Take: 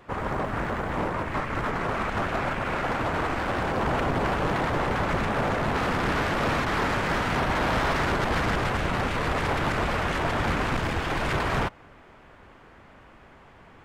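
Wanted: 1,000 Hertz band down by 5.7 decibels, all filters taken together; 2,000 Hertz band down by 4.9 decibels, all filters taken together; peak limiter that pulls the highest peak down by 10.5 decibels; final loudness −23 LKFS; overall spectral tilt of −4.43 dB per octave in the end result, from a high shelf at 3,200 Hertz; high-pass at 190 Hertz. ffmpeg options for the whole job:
ffmpeg -i in.wav -af "highpass=190,equalizer=frequency=1000:width_type=o:gain=-6.5,equalizer=frequency=2000:width_type=o:gain=-5,highshelf=frequency=3200:gain=3.5,volume=12.5dB,alimiter=limit=-15dB:level=0:latency=1" out.wav

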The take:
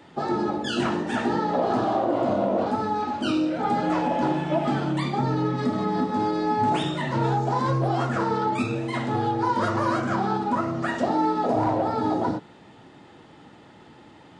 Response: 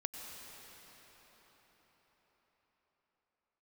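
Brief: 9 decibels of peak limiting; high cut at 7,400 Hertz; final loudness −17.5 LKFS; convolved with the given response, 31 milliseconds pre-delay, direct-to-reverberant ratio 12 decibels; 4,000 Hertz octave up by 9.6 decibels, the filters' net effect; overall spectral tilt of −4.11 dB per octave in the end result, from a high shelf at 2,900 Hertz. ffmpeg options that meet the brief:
-filter_complex "[0:a]lowpass=7400,highshelf=frequency=2900:gain=4.5,equalizer=frequency=4000:width_type=o:gain=9,alimiter=limit=-20.5dB:level=0:latency=1,asplit=2[link_01][link_02];[1:a]atrim=start_sample=2205,adelay=31[link_03];[link_02][link_03]afir=irnorm=-1:irlink=0,volume=-12dB[link_04];[link_01][link_04]amix=inputs=2:normalize=0,volume=11dB"

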